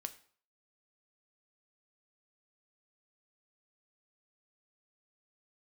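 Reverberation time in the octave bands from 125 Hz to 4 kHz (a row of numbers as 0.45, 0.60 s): 0.50, 0.45, 0.50, 0.50, 0.45, 0.45 s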